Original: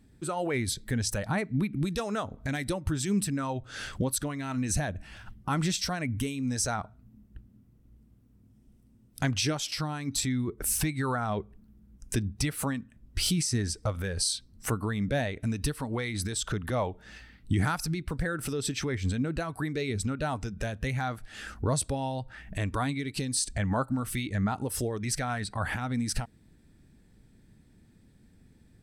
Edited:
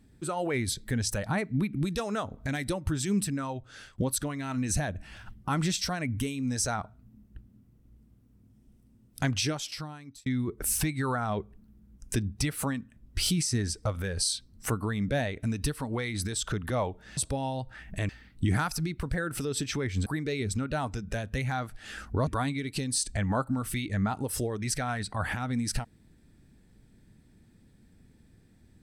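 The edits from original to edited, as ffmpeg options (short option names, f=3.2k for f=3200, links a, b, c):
-filter_complex "[0:a]asplit=7[a][b][c][d][e][f][g];[a]atrim=end=3.98,asetpts=PTS-STARTPTS,afade=t=out:st=3.06:d=0.92:c=qsin:silence=0.0668344[h];[b]atrim=start=3.98:end=10.26,asetpts=PTS-STARTPTS,afade=t=in:d=0.004:c=hsin:silence=0.0668344,afade=t=out:st=5.38:d=0.9[i];[c]atrim=start=10.26:end=17.172,asetpts=PTS-STARTPTS,afade=t=in:d=0.004:c=hsin[j];[d]atrim=start=21.758:end=22.682[k];[e]atrim=start=17.168:end=19.142[l];[f]atrim=start=19.548:end=21.762[m];[g]atrim=start=22.678[n];[h][i][j]concat=n=3:v=0:a=1[o];[o][k]acrossfade=d=0.004:c1=hsin:c2=hsin[p];[p][l]acrossfade=d=0.004:c1=hsin:c2=hsin[q];[q][m]acrossfade=d=0.004:c1=hsin:c2=hsin[r];[r][n]acrossfade=d=0.004:c1=hsin:c2=hsin"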